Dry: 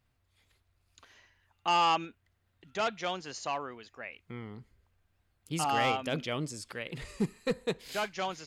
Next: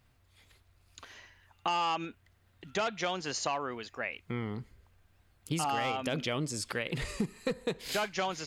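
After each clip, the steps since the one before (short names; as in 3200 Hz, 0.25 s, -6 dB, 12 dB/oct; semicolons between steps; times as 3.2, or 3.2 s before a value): in parallel at +3 dB: limiter -25 dBFS, peak gain reduction 7.5 dB; on the sum: compressor 6:1, threshold -29 dBFS, peak gain reduction 10 dB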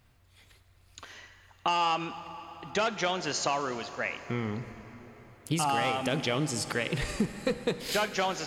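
plate-style reverb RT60 4.9 s, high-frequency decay 0.7×, DRR 11 dB; gain +3.5 dB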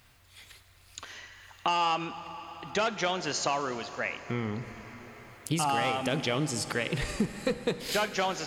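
mismatched tape noise reduction encoder only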